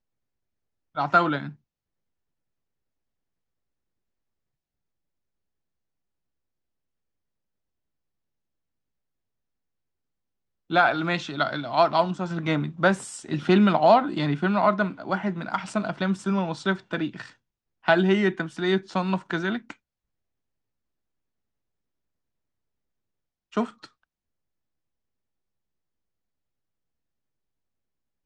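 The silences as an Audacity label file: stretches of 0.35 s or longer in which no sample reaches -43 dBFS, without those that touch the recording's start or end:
1.530000	10.700000	silence
17.320000	17.840000	silence
19.730000	23.530000	silence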